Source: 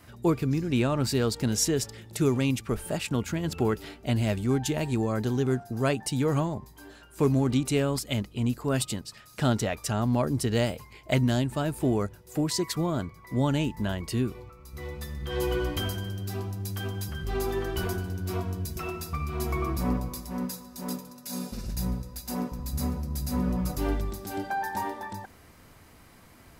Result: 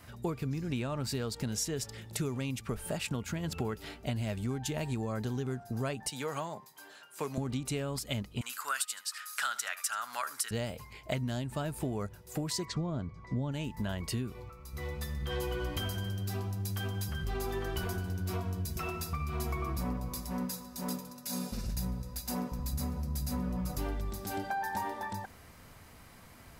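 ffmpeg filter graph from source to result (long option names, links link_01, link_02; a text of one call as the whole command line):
ffmpeg -i in.wav -filter_complex "[0:a]asettb=1/sr,asplit=3[link_01][link_02][link_03];[link_01]atrim=end=6.104[link_04];[link_02]atrim=start=6.1:end=7.38,asetpts=PTS-STARTPTS,afade=type=in:duration=0.004:curve=qsin,afade=type=out:start_time=1.276:duration=0.004:curve=qsin,highpass=frequency=170:width=0.5412,highpass=frequency=170:width=1.3066,equalizer=frequency=230:width_type=o:width=1.9:gain=-12[link_05];[link_03]atrim=start=7.376[link_06];[link_04][link_05]acrossfade=duration=0.004:curve1=hsin:curve2=qsin[link_07];[link_07][link_06]acrossfade=duration=0.004:curve1=qsin:curve2=hsin,asettb=1/sr,asplit=3[link_08][link_09][link_10];[link_08]atrim=end=8.414[link_11];[link_09]atrim=start=8.41:end=10.51,asetpts=PTS-STARTPTS,afade=type=in:duration=0.004:curve=qsin,afade=type=out:start_time=2.096:duration=0.004:curve=qsin,highpass=frequency=1400:width_type=q:width=3.7,equalizer=frequency=11000:width=0.4:gain=11.5,aecho=1:1:76:0.126,atrim=end_sample=92610[link_12];[link_10]atrim=start=10.506[link_13];[link_11][link_12]acrossfade=duration=0.004:curve1=hsin:curve2=qsin[link_14];[link_14][link_13]acrossfade=duration=0.004:curve1=qsin:curve2=hsin,asettb=1/sr,asplit=3[link_15][link_16][link_17];[link_15]atrim=end=12.654[link_18];[link_16]atrim=start=12.65:end=13.52,asetpts=PTS-STARTPTS,afade=type=in:duration=0.004:curve=qsin,afade=type=out:start_time=0.866:duration=0.004:curve=qsin,lowpass=frequency=6900:width=0.5412,lowpass=frequency=6900:width=1.3066,tiltshelf=frequency=660:gain=5[link_19];[link_17]atrim=start=13.516[link_20];[link_18][link_19]acrossfade=duration=0.004:curve1=hsin:curve2=qsin[link_21];[link_21][link_20]acrossfade=duration=0.004:curve1=qsin:curve2=hsin,equalizer=frequency=330:width=2.3:gain=-5,acompressor=threshold=-31dB:ratio=6" out.wav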